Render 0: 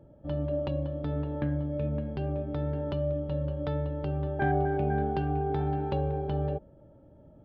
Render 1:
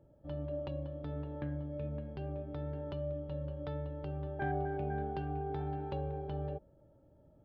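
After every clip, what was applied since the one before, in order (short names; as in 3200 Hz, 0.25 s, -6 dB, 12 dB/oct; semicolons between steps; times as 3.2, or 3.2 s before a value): bell 220 Hz -3.5 dB 0.73 oct; gain -8 dB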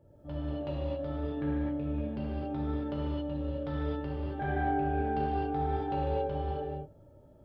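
non-linear reverb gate 0.3 s flat, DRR -7 dB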